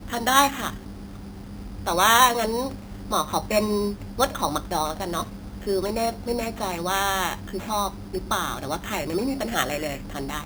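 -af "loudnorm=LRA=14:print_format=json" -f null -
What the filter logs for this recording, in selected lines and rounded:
"input_i" : "-25.1",
"input_tp" : "-2.8",
"input_lra" : "5.3",
"input_thresh" : "-35.4",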